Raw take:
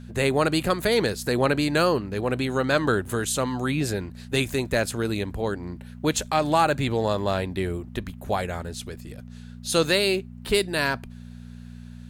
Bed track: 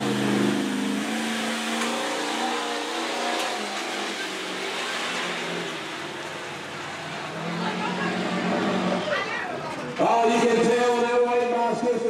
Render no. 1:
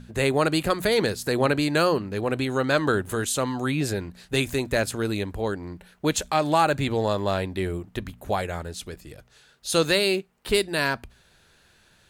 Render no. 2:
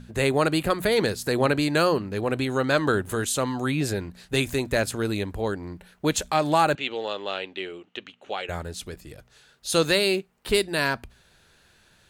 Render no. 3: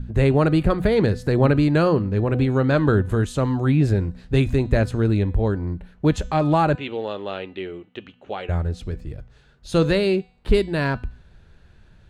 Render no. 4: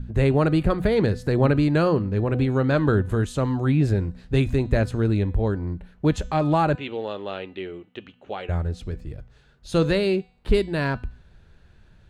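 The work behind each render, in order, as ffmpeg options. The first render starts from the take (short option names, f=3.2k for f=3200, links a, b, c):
-af "bandreject=f=60:t=h:w=4,bandreject=f=120:t=h:w=4,bandreject=f=180:t=h:w=4,bandreject=f=240:t=h:w=4"
-filter_complex "[0:a]asettb=1/sr,asplit=3[a][b][c];[a]atrim=end=0.524[d];[b]atrim=start=0.52:end=0.97,asetpts=PTS-STARTPTS,afade=t=in:d=0.004:c=qsin,afade=t=out:st=0.446:d=0.004:c=qsin,equalizer=f=5.8k:w=1.5:g=-5[e];[c]atrim=start=0.966[f];[d][e]acrossfade=d=0.004:c1=hsin:c2=qsin[g];[g][f]acrossfade=d=0.004:c1=qsin:c2=hsin,asettb=1/sr,asplit=3[h][i][j];[h]atrim=end=6.754[k];[i]atrim=start=6.75:end=8.49,asetpts=PTS-STARTPTS,afade=t=in:d=0.004:c=qsin,afade=t=out:st=1.736:d=0.004:c=qsin,highpass=490,equalizer=f=650:t=q:w=4:g=-7,equalizer=f=1k:t=q:w=4:g=-8,equalizer=f=1.7k:t=q:w=4:g=-4,equalizer=f=2.9k:t=q:w=4:g=10,equalizer=f=5k:t=q:w=4:g=-9,lowpass=f=5.7k:w=0.5412,lowpass=f=5.7k:w=1.3066[l];[j]atrim=start=8.486[m];[k][l]acrossfade=d=0.004:c1=hsin:c2=qsin[n];[n][m]acrossfade=d=0.004:c1=qsin:c2=hsin"
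-af "aemphasis=mode=reproduction:type=riaa,bandreject=f=249.5:t=h:w=4,bandreject=f=499:t=h:w=4,bandreject=f=748.5:t=h:w=4,bandreject=f=998:t=h:w=4,bandreject=f=1.2475k:t=h:w=4,bandreject=f=1.497k:t=h:w=4,bandreject=f=1.7465k:t=h:w=4,bandreject=f=1.996k:t=h:w=4,bandreject=f=2.2455k:t=h:w=4,bandreject=f=2.495k:t=h:w=4,bandreject=f=2.7445k:t=h:w=4,bandreject=f=2.994k:t=h:w=4,bandreject=f=3.2435k:t=h:w=4,bandreject=f=3.493k:t=h:w=4,bandreject=f=3.7425k:t=h:w=4,bandreject=f=3.992k:t=h:w=4,bandreject=f=4.2415k:t=h:w=4,bandreject=f=4.491k:t=h:w=4,bandreject=f=4.7405k:t=h:w=4,bandreject=f=4.99k:t=h:w=4,bandreject=f=5.2395k:t=h:w=4,bandreject=f=5.489k:t=h:w=4,bandreject=f=5.7385k:t=h:w=4,bandreject=f=5.988k:t=h:w=4,bandreject=f=6.2375k:t=h:w=4,bandreject=f=6.487k:t=h:w=4,bandreject=f=6.7365k:t=h:w=4,bandreject=f=6.986k:t=h:w=4,bandreject=f=7.2355k:t=h:w=4,bandreject=f=7.485k:t=h:w=4,bandreject=f=7.7345k:t=h:w=4,bandreject=f=7.984k:t=h:w=4,bandreject=f=8.2335k:t=h:w=4"
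-af "volume=-2dB"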